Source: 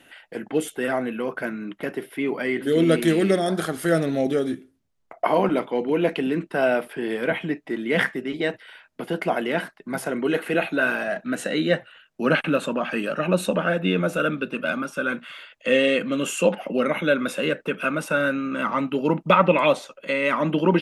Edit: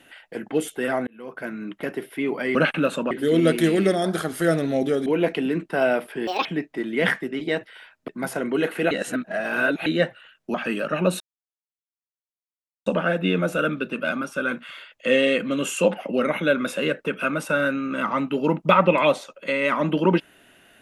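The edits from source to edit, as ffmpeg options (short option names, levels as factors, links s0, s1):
-filter_complex "[0:a]asplit=12[s0][s1][s2][s3][s4][s5][s6][s7][s8][s9][s10][s11];[s0]atrim=end=1.07,asetpts=PTS-STARTPTS,afade=t=out:st=1.066:d=0.004:c=hsin[s12];[s1]atrim=start=1.07:end=2.552,asetpts=PTS-STARTPTS,afade=t=in:d=0.57[s13];[s2]atrim=start=12.248:end=12.812[s14];[s3]atrim=start=2.548:end=4.502[s15];[s4]atrim=start=5.868:end=7.084[s16];[s5]atrim=start=7.08:end=7.38,asetpts=PTS-STARTPTS,asetrate=72765,aresample=44100,atrim=end_sample=8018,asetpts=PTS-STARTPTS[s17];[s6]atrim=start=7.376:end=9.012[s18];[s7]atrim=start=9.788:end=10.622[s19];[s8]atrim=start=10.618:end=11.572,asetpts=PTS-STARTPTS,areverse[s20];[s9]atrim=start=11.568:end=12.252[s21];[s10]atrim=start=12.808:end=13.47,asetpts=PTS-STARTPTS,afade=t=out:st=0.658:d=0.004:c=hsin,apad=pad_dur=1.66[s22];[s11]atrim=start=13.47,asetpts=PTS-STARTPTS,afade=t=in:d=0.004:c=hsin[s23];[s12][s13]concat=n=2:v=0:a=1[s24];[s24][s14]acrossfade=d=0.004:c1=hsin:c2=hsin[s25];[s25][s15]acrossfade=d=0.004:c1=hsin:c2=hsin[s26];[s26][s16]acrossfade=d=0.004:c1=hsin:c2=hsin[s27];[s27][s17]acrossfade=d=0.004:c1=hsin:c2=hsin[s28];[s28][s18]acrossfade=d=0.004:c1=hsin:c2=hsin[s29];[s29][s19]acrossfade=d=0.004:c1=hsin:c2=hsin[s30];[s30][s20]acrossfade=d=0.004:c1=hsin:c2=hsin[s31];[s31][s21]acrossfade=d=0.004:c1=hsin:c2=hsin[s32];[s22][s23]concat=n=2:v=0:a=1[s33];[s32][s33]acrossfade=d=0.004:c1=hsin:c2=hsin"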